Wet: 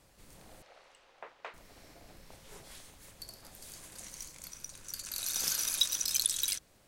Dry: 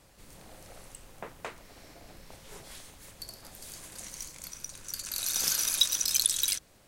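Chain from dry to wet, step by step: 0.62–1.54 three-band isolator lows -22 dB, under 430 Hz, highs -23 dB, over 5000 Hz; gain -4 dB

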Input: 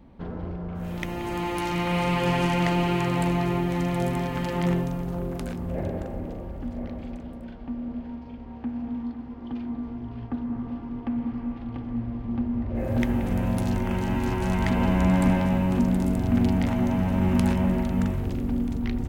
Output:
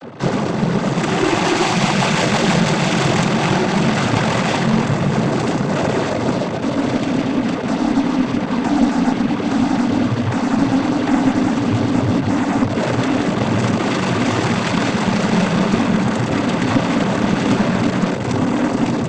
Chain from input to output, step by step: fuzz box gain 46 dB, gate -48 dBFS; noise vocoder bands 16; added harmonics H 2 -13 dB, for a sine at -1.5 dBFS; gain -1.5 dB

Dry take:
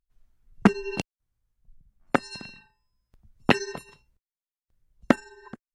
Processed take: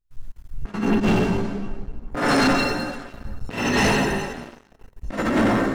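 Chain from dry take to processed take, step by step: plate-style reverb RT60 1.5 s, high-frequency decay 0.85×, DRR -5.5 dB; negative-ratio compressor -25 dBFS, ratio -0.5; 0.88–2.17 high shelf 2600 Hz -12 dB; chorus voices 4, 0.42 Hz, delay 16 ms, depth 2.5 ms; low shelf 98 Hz +9 dB; sample leveller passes 3

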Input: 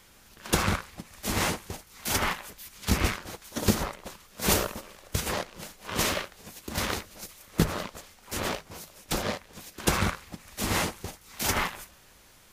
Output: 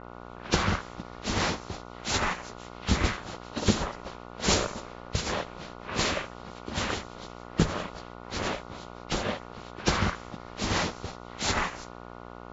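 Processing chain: nonlinear frequency compression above 1800 Hz 1.5:1; buzz 60 Hz, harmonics 24, -44 dBFS -1 dB/oct; low-pass opened by the level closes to 1600 Hz, open at -27 dBFS

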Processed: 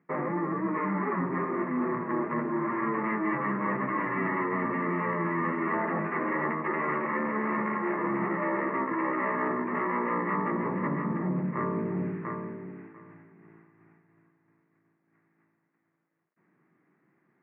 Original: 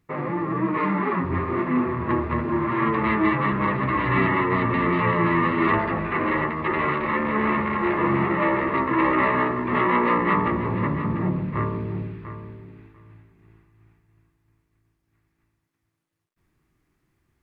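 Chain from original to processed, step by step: elliptic band-pass 170–2000 Hz, stop band 40 dB; reverse; compressor 6:1, threshold -32 dBFS, peak gain reduction 14 dB; reverse; gain +5 dB

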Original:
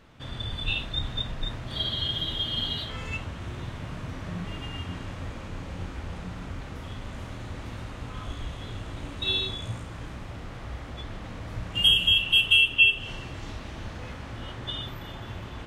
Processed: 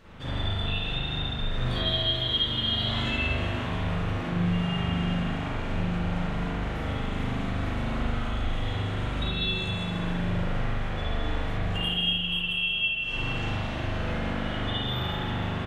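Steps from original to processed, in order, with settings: compressor 16:1, threshold -33 dBFS, peak gain reduction 20 dB; 1.49–3.76 doubler 17 ms -3 dB; echo 0.165 s -8.5 dB; spring tank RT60 1.8 s, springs 40 ms, chirp 45 ms, DRR -9 dB

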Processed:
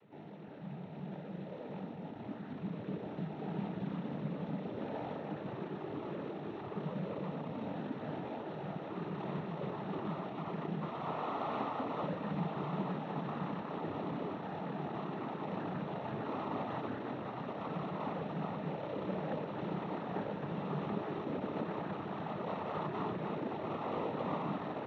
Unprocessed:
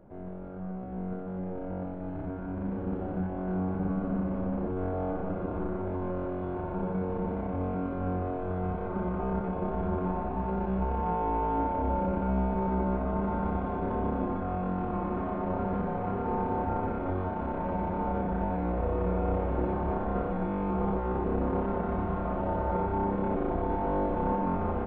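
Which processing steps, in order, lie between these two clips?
CVSD 16 kbps; noise vocoder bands 12; gain -7 dB

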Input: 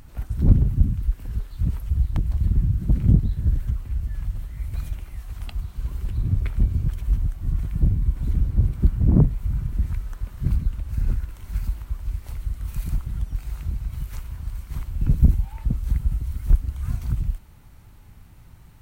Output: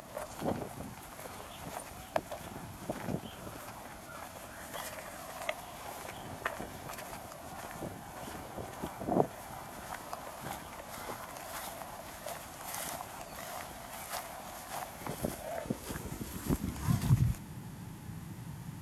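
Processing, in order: high-pass sweep 780 Hz -> 170 Hz, 15.06–17.42; formant shift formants -4 st; band noise 31–310 Hz -61 dBFS; gain +6 dB

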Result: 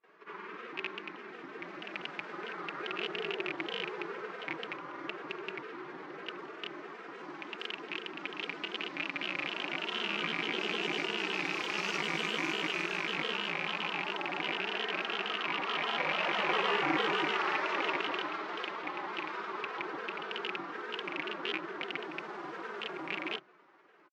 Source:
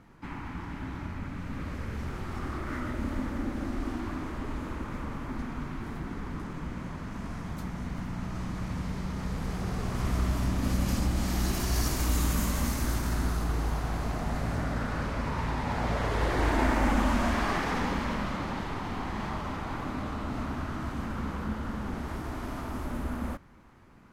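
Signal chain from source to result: rattling part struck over -30 dBFS, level -17 dBFS; HPF 630 Hz 6 dB/oct; comb 4 ms, depth 77%; frequency shift +130 Hz; grains, pitch spread up and down by 3 st; air absorption 180 m; pre-echo 0.182 s -24 dB

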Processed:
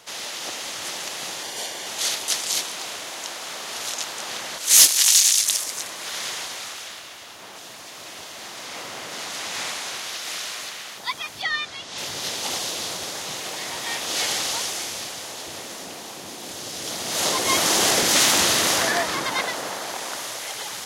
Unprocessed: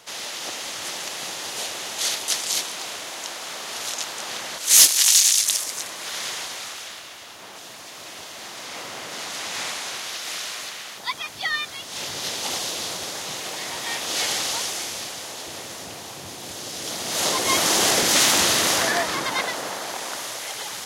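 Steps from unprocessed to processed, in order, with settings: 1.43–1.87 notch comb 1300 Hz; 11.42–11.98 LPF 6700 Hz 12 dB/oct; 15.64–16.54 resonant low shelf 160 Hz -7 dB, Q 1.5

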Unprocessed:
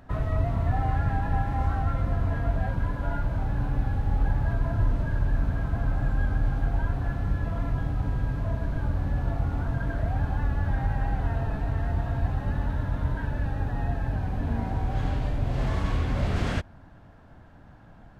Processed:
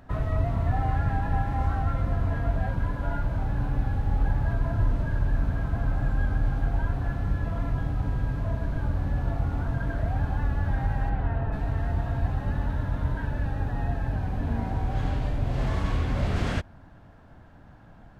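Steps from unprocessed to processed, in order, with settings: 11.09–11.51 LPF 3600 Hz -> 2400 Hz 12 dB/oct

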